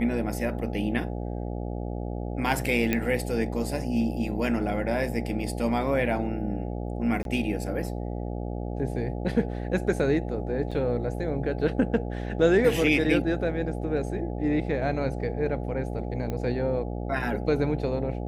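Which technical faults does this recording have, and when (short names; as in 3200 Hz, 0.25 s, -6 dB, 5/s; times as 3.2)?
buzz 60 Hz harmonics 14 -32 dBFS
2.93 pop -11 dBFS
7.23–7.25 gap 22 ms
10.71–10.72 gap 5.6 ms
16.3 pop -19 dBFS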